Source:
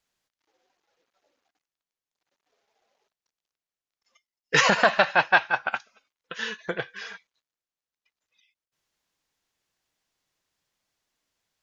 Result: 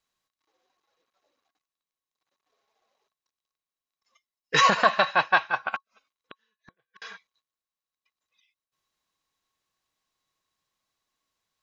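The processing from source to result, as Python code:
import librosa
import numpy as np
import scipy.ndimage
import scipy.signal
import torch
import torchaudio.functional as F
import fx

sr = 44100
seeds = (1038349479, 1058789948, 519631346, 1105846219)

y = fx.gate_flip(x, sr, shuts_db=-31.0, range_db=-42, at=(5.76, 7.02))
y = fx.small_body(y, sr, hz=(1100.0, 3900.0), ring_ms=70, db=15)
y = F.gain(torch.from_numpy(y), -3.0).numpy()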